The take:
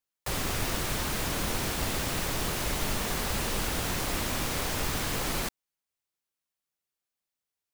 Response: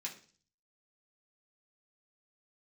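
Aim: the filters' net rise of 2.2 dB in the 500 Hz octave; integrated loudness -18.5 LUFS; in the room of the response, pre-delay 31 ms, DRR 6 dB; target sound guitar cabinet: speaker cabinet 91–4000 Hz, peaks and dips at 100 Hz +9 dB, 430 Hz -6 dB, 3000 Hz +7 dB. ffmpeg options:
-filter_complex "[0:a]equalizer=f=500:t=o:g=5.5,asplit=2[a][b];[1:a]atrim=start_sample=2205,adelay=31[c];[b][c]afir=irnorm=-1:irlink=0,volume=-5dB[d];[a][d]amix=inputs=2:normalize=0,highpass=91,equalizer=f=100:t=q:w=4:g=9,equalizer=f=430:t=q:w=4:g=-6,equalizer=f=3k:t=q:w=4:g=7,lowpass=f=4k:w=0.5412,lowpass=f=4k:w=1.3066,volume=11.5dB"

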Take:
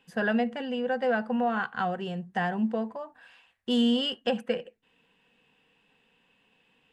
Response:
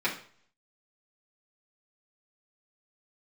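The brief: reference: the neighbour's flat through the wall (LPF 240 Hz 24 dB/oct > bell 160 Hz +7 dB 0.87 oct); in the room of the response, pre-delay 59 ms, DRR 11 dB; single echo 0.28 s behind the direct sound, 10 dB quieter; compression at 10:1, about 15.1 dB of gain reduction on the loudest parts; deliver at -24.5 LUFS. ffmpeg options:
-filter_complex "[0:a]acompressor=threshold=-37dB:ratio=10,aecho=1:1:280:0.316,asplit=2[a][b];[1:a]atrim=start_sample=2205,adelay=59[c];[b][c]afir=irnorm=-1:irlink=0,volume=-21.5dB[d];[a][d]amix=inputs=2:normalize=0,lowpass=f=240:w=0.5412,lowpass=f=240:w=1.3066,equalizer=f=160:t=o:w=0.87:g=7,volume=18.5dB"

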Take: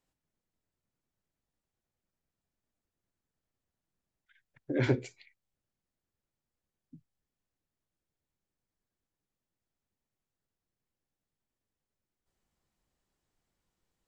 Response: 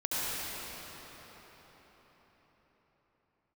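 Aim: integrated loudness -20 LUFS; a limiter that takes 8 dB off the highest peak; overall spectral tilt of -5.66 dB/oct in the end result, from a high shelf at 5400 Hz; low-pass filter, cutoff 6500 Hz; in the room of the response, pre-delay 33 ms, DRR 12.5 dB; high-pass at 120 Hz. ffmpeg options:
-filter_complex "[0:a]highpass=120,lowpass=6.5k,highshelf=f=5.4k:g=-7.5,alimiter=limit=-24dB:level=0:latency=1,asplit=2[a][b];[1:a]atrim=start_sample=2205,adelay=33[c];[b][c]afir=irnorm=-1:irlink=0,volume=-22dB[d];[a][d]amix=inputs=2:normalize=0,volume=19.5dB"

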